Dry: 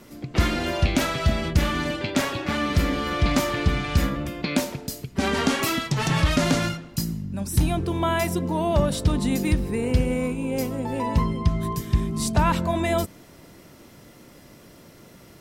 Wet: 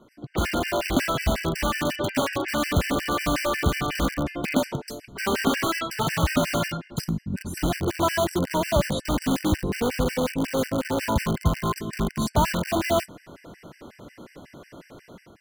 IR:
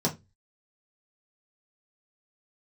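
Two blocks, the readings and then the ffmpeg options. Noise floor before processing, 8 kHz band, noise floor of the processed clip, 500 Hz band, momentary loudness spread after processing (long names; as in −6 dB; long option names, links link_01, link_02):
−49 dBFS, −1.0 dB, −55 dBFS, +0.5 dB, 5 LU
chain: -filter_complex "[0:a]lowpass=frequency=1800:poles=1,lowshelf=frequency=240:gain=-6.5,dynaudnorm=framelen=110:gausssize=7:maxgain=11.5dB,asplit=2[link_01][link_02];[link_02]aeval=exprs='(mod(5.01*val(0)+1,2)-1)/5.01':channel_layout=same,volume=-3.5dB[link_03];[link_01][link_03]amix=inputs=2:normalize=0,afftfilt=real='re*gt(sin(2*PI*5.5*pts/sr)*(1-2*mod(floor(b*sr/1024/1500),2)),0)':imag='im*gt(sin(2*PI*5.5*pts/sr)*(1-2*mod(floor(b*sr/1024/1500),2)),0)':win_size=1024:overlap=0.75,volume=-6.5dB"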